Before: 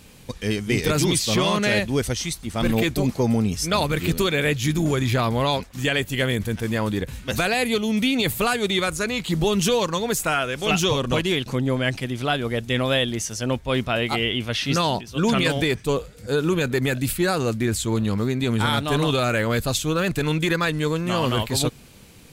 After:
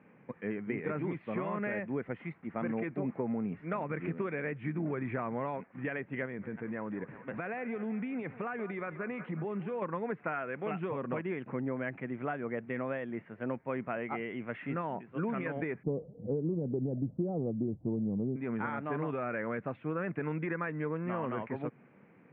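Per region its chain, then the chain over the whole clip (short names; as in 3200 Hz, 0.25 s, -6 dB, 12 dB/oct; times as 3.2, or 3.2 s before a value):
6.25–9.82 narrowing echo 0.182 s, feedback 71%, band-pass 1100 Hz, level -14.5 dB + compressor, threshold -23 dBFS
15.83–18.36 steep low-pass 770 Hz + tilt -4 dB/oct
whole clip: HPF 150 Hz 24 dB/oct; compressor, threshold -22 dBFS; steep low-pass 2200 Hz 48 dB/oct; gain -8 dB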